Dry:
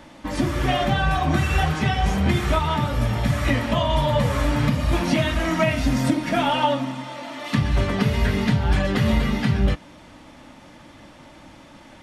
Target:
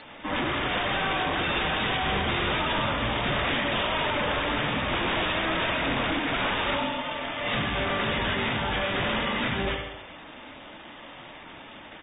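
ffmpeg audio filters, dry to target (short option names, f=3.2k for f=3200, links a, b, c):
-filter_complex "[0:a]aemphasis=mode=production:type=riaa,aecho=1:1:74|148|222|296|370|444|518:0.447|0.246|0.135|0.0743|0.0409|0.0225|0.0124,acrusher=samples=7:mix=1:aa=0.000001,aeval=exprs='0.075*(abs(mod(val(0)/0.075+3,4)-2)-1)':c=same,asettb=1/sr,asplit=3[a][b][c];[a]atrim=end=1.574[d];[b]atrim=start=1.57:end=3.81,asetpts=PTS-STARTPTS,afade=t=in:d=0.004:c=qsin,afade=t=out:st=2.236:d=0.004:c=qsin,bass=f=250:g=2,treble=f=4k:g=4[e];[c]atrim=start=3.806[f];[d][e]acrossfade=d=0.004:c1=hsin:c2=qsin[g];[g][f]acrossfade=d=0.004:c1=qsin:c2=hsin" -ar 32000 -c:a aac -b:a 16k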